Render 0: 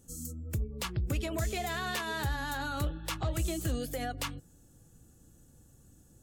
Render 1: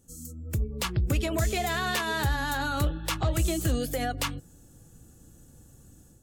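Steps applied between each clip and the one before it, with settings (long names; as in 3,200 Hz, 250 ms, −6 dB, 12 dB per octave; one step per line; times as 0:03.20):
automatic gain control gain up to 8 dB
level −2 dB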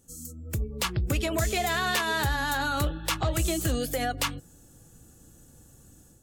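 low-shelf EQ 360 Hz −4.5 dB
level +2.5 dB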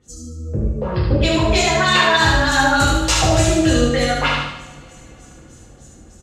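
auto-filter low-pass sine 3.3 Hz 500–7,300 Hz
on a send: repeating echo 75 ms, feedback 49%, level −4 dB
on the sum: coupled-rooms reverb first 0.56 s, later 3.9 s, from −27 dB, DRR −6 dB
level +2.5 dB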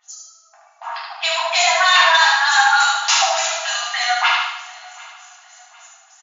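soft clipping −7.5 dBFS, distortion −20 dB
linear-phase brick-wall band-pass 660–7,200 Hz
repeating echo 748 ms, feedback 38%, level −23 dB
level +4 dB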